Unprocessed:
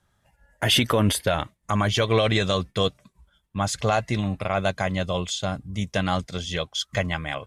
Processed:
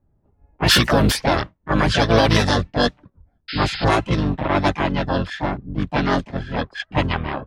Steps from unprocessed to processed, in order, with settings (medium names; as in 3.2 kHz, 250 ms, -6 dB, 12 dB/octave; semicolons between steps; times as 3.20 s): harmony voices -12 st -1 dB, +4 st -5 dB, +7 st -2 dB; level-controlled noise filter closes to 470 Hz, open at -12.5 dBFS; painted sound noise, 3.48–3.85 s, 1.3–5.2 kHz -31 dBFS; trim +1 dB